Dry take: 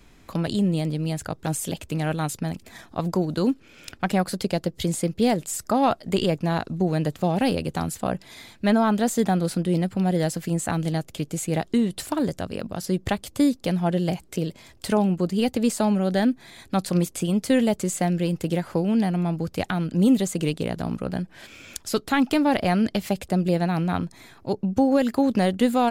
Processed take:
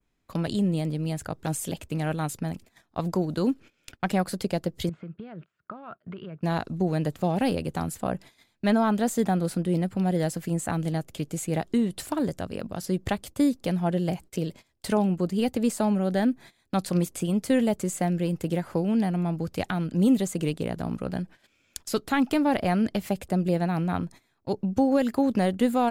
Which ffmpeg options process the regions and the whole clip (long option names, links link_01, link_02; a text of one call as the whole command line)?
ffmpeg -i in.wav -filter_complex "[0:a]asettb=1/sr,asplit=3[link_01][link_02][link_03];[link_01]atrim=end=4.894[link_04];[link_02]atrim=start=4.89:end=6.42,asetpts=PTS-STARTPTS,afade=type=in:duration=0.004:curve=qsin,afade=type=out:start_time=1.526:duration=0.004:curve=qsin,acompressor=threshold=-30dB:ratio=16:attack=3.2:release=140:knee=1:detection=peak,highpass=120,equalizer=frequency=160:width_type=q:width=4:gain=4,equalizer=frequency=270:width_type=q:width=4:gain=-8,equalizer=frequency=510:width_type=q:width=4:gain=-6,equalizer=frequency=820:width_type=q:width=4:gain=-8,equalizer=frequency=1400:width_type=q:width=4:gain=8,equalizer=frequency=2000:width_type=q:width=4:gain=-6,lowpass=frequency=2500:width=0.5412,lowpass=frequency=2500:width=1.3066[link_05];[link_03]atrim=start=6.416[link_06];[link_04][link_05]acrossfade=duration=0.004:curve1=hsin:curve2=qsin[link_07];[link_07][link_06]acrossfade=duration=0.004:curve1=qsin:curve2=hsin,agate=range=-20dB:threshold=-40dB:ratio=16:detection=peak,adynamicequalizer=threshold=0.00501:dfrequency=4300:dqfactor=0.8:tfrequency=4300:tqfactor=0.8:attack=5:release=100:ratio=0.375:range=2.5:mode=cutabove:tftype=bell,volume=-2.5dB" out.wav